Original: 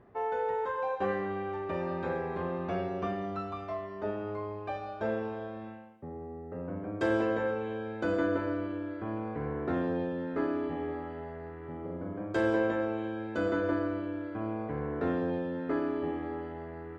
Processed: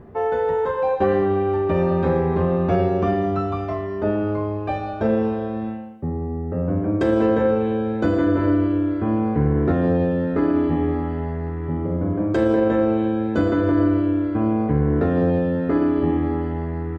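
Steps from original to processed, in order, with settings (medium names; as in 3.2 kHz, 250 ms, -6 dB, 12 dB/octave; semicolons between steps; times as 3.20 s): bass shelf 380 Hz +11.5 dB; peak limiter -18 dBFS, peak gain reduction 6 dB; doubling 13 ms -7.5 dB; trim +7.5 dB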